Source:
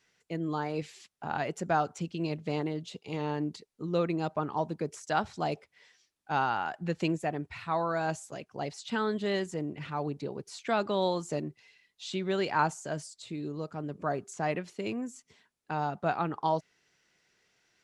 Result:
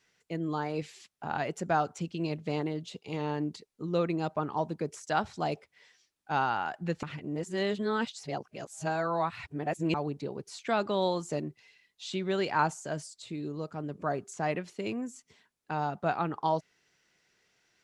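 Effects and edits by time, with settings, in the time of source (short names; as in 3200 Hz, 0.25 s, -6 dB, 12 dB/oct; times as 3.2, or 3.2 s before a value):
7.03–9.94 reverse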